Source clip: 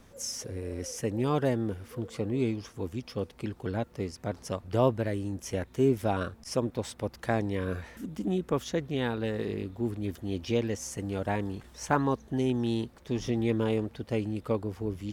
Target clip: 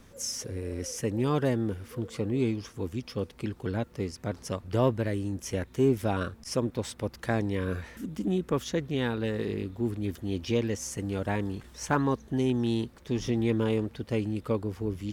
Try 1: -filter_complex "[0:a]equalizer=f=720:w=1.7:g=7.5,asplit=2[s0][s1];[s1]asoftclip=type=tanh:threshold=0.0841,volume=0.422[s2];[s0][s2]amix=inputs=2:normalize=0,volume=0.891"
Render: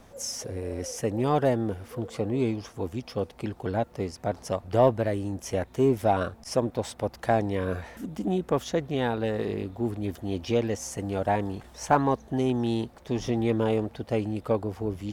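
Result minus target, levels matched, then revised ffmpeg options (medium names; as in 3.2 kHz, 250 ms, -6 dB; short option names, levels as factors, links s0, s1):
1 kHz band +5.5 dB
-filter_complex "[0:a]equalizer=f=720:w=1.7:g=-4,asplit=2[s0][s1];[s1]asoftclip=type=tanh:threshold=0.0841,volume=0.422[s2];[s0][s2]amix=inputs=2:normalize=0,volume=0.891"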